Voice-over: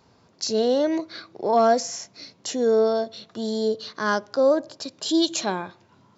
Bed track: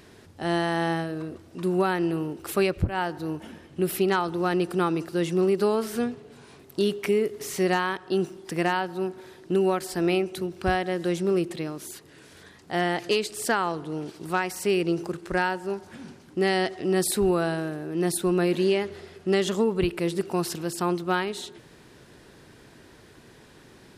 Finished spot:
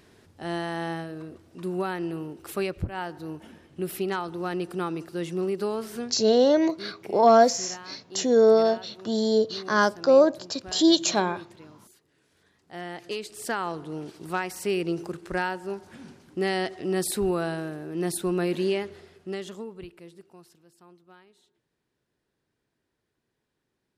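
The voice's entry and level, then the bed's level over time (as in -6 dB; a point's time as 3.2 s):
5.70 s, +2.0 dB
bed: 5.96 s -5.5 dB
6.46 s -17.5 dB
12.28 s -17.5 dB
13.73 s -3 dB
18.77 s -3 dB
20.65 s -28.5 dB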